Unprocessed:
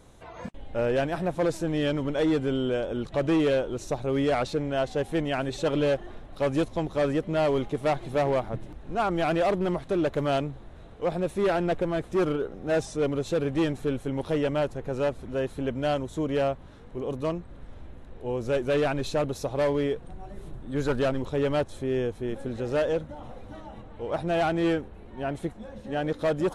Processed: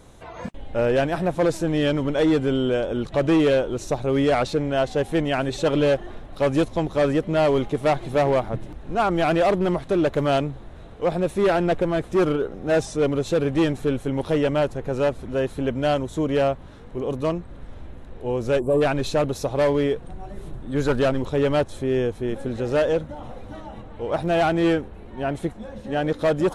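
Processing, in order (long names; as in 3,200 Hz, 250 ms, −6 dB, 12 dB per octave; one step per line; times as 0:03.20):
0:18.59–0:18.81: gain on a spectral selection 1,200–7,200 Hz −23 dB
0:24.14–0:24.64: surface crackle 69 per second −46 dBFS
level +5 dB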